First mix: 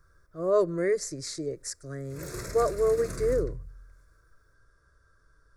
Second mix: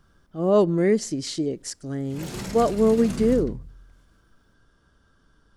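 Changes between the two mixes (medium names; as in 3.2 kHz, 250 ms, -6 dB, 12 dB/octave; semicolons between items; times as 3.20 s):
speech: add peaking EQ 330 Hz +5.5 dB 1.1 oct; master: remove static phaser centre 820 Hz, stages 6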